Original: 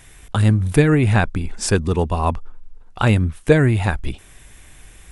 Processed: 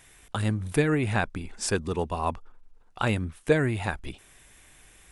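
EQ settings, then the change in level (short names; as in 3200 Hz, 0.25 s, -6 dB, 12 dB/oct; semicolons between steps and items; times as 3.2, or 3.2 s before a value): low shelf 170 Hz -9 dB; -6.5 dB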